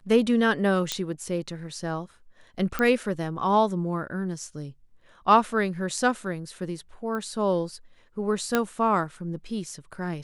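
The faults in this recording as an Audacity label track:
0.920000	0.920000	pop -11 dBFS
2.790000	2.790000	pop -13 dBFS
7.150000	7.150000	pop -22 dBFS
8.550000	8.550000	pop -8 dBFS

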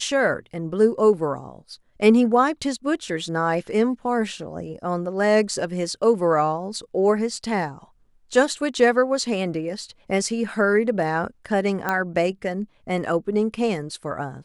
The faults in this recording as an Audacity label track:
11.890000	11.890000	pop -10 dBFS

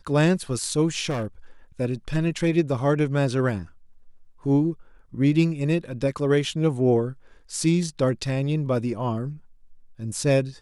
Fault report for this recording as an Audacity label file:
1.090000	1.260000	clipped -23.5 dBFS

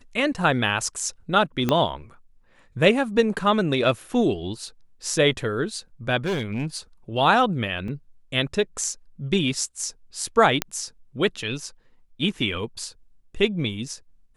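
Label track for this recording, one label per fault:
1.690000	1.690000	pop -8 dBFS
6.170000	6.770000	clipped -21.5 dBFS
7.880000	7.880000	dropout 2.2 ms
10.620000	10.620000	pop -5 dBFS

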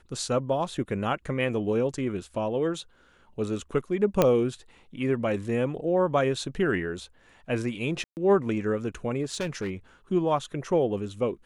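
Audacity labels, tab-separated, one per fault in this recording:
4.220000	4.220000	pop -7 dBFS
8.040000	8.170000	dropout 129 ms
9.230000	9.700000	clipped -25.5 dBFS

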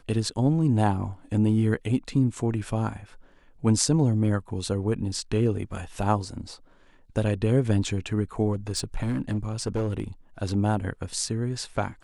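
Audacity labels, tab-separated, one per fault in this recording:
8.520000	10.040000	clipped -22 dBFS

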